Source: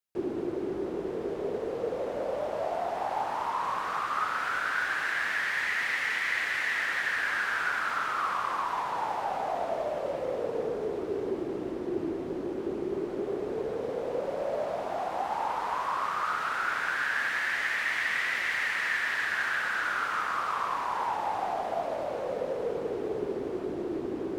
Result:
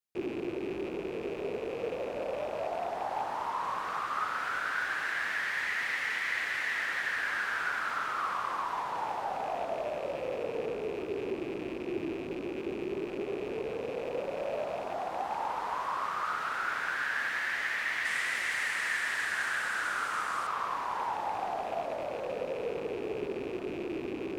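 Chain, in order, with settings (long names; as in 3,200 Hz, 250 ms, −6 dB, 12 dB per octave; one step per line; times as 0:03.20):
loose part that buzzes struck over −45 dBFS, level −33 dBFS
0:18.05–0:20.47: parametric band 8,700 Hz +10.5 dB 0.93 octaves
level −3 dB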